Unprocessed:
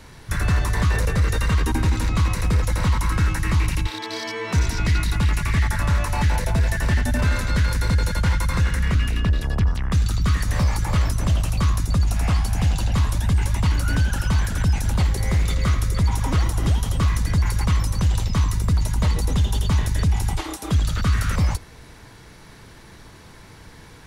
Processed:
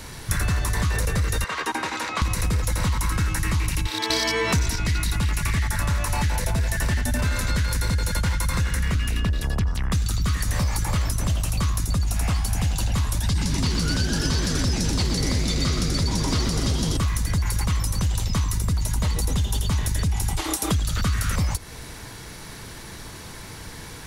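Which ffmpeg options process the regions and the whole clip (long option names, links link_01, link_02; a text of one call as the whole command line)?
ffmpeg -i in.wav -filter_complex "[0:a]asettb=1/sr,asplit=3[link_01][link_02][link_03];[link_01]atrim=end=1.444[link_04];[link_02]atrim=start=1.44:end=2.22,asetpts=PTS-STARTPTS,afade=type=in:duration=0.004:curve=qsin,afade=type=out:start_time=0.776:duration=0.004:curve=qsin,highpass=590,aemphasis=mode=reproduction:type=75fm[link_05];[link_03]atrim=start=2.216[link_06];[link_04][link_05]acrossfade=duration=0.004:curve1=hsin:curve2=qsin[link_07];[link_07][link_06]acrossfade=duration=0.004:curve1=qsin:curve2=hsin,asettb=1/sr,asplit=3[link_08][link_09][link_10];[link_08]atrim=end=4.104[link_11];[link_09]atrim=start=4.1:end=4.76,asetpts=PTS-STARTPTS,afade=type=in:duration=0.004:curve=qsin,afade=type=out:start_time=0.656:duration=0.004:curve=qsin,acontrast=53,aeval=exprs='val(0)+0.0158*(sin(2*PI*60*n/s)+sin(2*PI*2*60*n/s)/2+sin(2*PI*3*60*n/s)/3+sin(2*PI*4*60*n/s)/4+sin(2*PI*5*60*n/s)/5)':channel_layout=same[link_12];[link_10]atrim=start=4.756[link_13];[link_11][link_12]acrossfade=duration=0.004:curve1=hsin:curve2=qsin[link_14];[link_14][link_13]acrossfade=duration=0.004:curve1=qsin:curve2=hsin,asettb=1/sr,asplit=3[link_15][link_16][link_17];[link_15]atrim=end=13.234[link_18];[link_16]atrim=start=13.23:end=16.97,asetpts=PTS-STARTPTS,afade=type=in:duration=0.004:curve=qsin,afade=type=out:start_time=3.736:duration=0.004:curve=qsin,equalizer=frequency=4700:width=1.6:gain=10.5,acrossover=split=9800[link_19][link_20];[link_20]acompressor=threshold=-53dB:ratio=4:attack=1:release=60[link_21];[link_19][link_21]amix=inputs=2:normalize=0,asplit=9[link_22][link_23][link_24][link_25][link_26][link_27][link_28][link_29][link_30];[link_23]adelay=123,afreqshift=97,volume=-6.5dB[link_31];[link_24]adelay=246,afreqshift=194,volume=-11.2dB[link_32];[link_25]adelay=369,afreqshift=291,volume=-16dB[link_33];[link_26]adelay=492,afreqshift=388,volume=-20.7dB[link_34];[link_27]adelay=615,afreqshift=485,volume=-25.4dB[link_35];[link_28]adelay=738,afreqshift=582,volume=-30.2dB[link_36];[link_29]adelay=861,afreqshift=679,volume=-34.9dB[link_37];[link_30]adelay=984,afreqshift=776,volume=-39.6dB[link_38];[link_22][link_31][link_32][link_33][link_34][link_35][link_36][link_37][link_38]amix=inputs=9:normalize=0,atrim=end_sample=164934[link_39];[link_17]atrim=start=16.966[link_40];[link_18][link_39]acrossfade=duration=0.004:curve1=hsin:curve2=qsin[link_41];[link_41][link_40]acrossfade=duration=0.004:curve1=qsin:curve2=hsin,highshelf=frequency=4800:gain=9,acompressor=threshold=-25dB:ratio=6,volume=5dB" out.wav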